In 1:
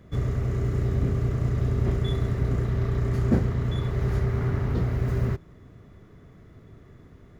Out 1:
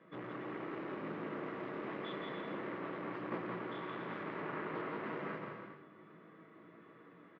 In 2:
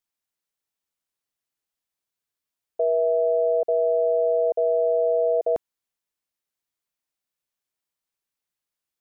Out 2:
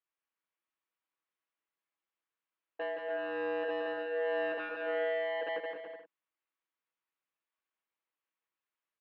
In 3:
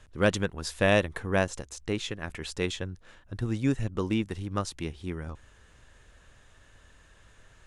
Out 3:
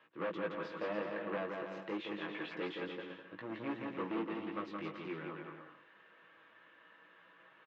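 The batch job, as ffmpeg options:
-filter_complex "[0:a]aecho=1:1:6.2:0.35,acrossover=split=660[a][b];[a]alimiter=limit=-18.5dB:level=0:latency=1:release=297[c];[b]acompressor=threshold=-36dB:ratio=6[d];[c][d]amix=inputs=2:normalize=0,flanger=delay=17:depth=3:speed=0.28,asoftclip=type=hard:threshold=-31.5dB,highpass=f=230:w=0.5412,highpass=f=230:w=1.3066,equalizer=f=250:t=q:w=4:g=-6,equalizer=f=420:t=q:w=4:g=-4,equalizer=f=710:t=q:w=4:g=-5,equalizer=f=1.1k:t=q:w=4:g=4,lowpass=f=2.9k:w=0.5412,lowpass=f=2.9k:w=1.3066,asplit=2[e][f];[f]aecho=0:1:170|289|372.3|430.6|471.4:0.631|0.398|0.251|0.158|0.1[g];[e][g]amix=inputs=2:normalize=0"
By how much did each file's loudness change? -16.5, -13.0, -11.5 LU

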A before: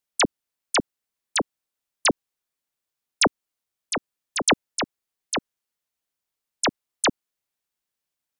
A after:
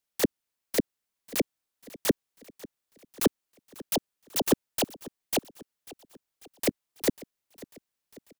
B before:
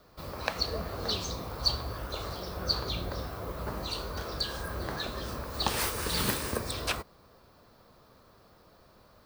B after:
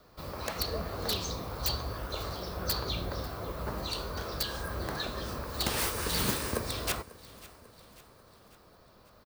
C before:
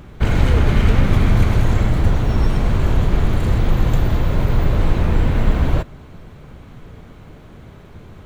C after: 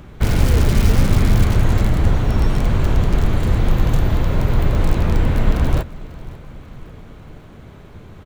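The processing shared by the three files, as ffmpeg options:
-filter_complex "[0:a]acrossover=split=610[a][b];[b]aeval=exprs='(mod(14.1*val(0)+1,2)-1)/14.1':c=same[c];[a][c]amix=inputs=2:normalize=0,aecho=1:1:544|1088|1632|2176:0.1|0.053|0.0281|0.0149"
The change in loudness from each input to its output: -5.0, -0.5, 0.0 LU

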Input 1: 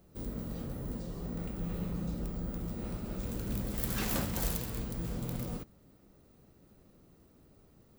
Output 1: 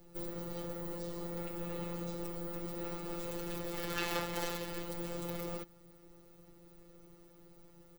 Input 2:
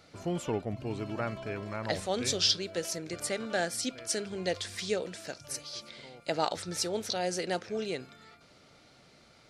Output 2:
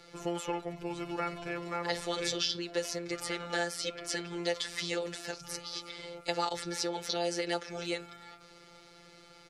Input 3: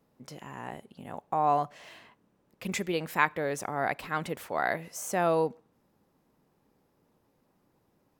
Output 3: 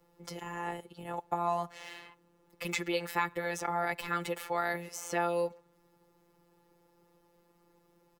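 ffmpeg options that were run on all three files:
-filter_complex "[0:a]aecho=1:1:2.3:0.52,afftfilt=real='hypot(re,im)*cos(PI*b)':imag='0':win_size=1024:overlap=0.75,acrossover=split=250|570|4800[a][b][c][d];[a]acompressor=threshold=-51dB:ratio=4[e];[b]acompressor=threshold=-47dB:ratio=4[f];[c]acompressor=threshold=-36dB:ratio=4[g];[d]acompressor=threshold=-50dB:ratio=4[h];[e][f][g][h]amix=inputs=4:normalize=0,volume=6dB"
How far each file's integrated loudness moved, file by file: -3.0, -2.0, -4.5 LU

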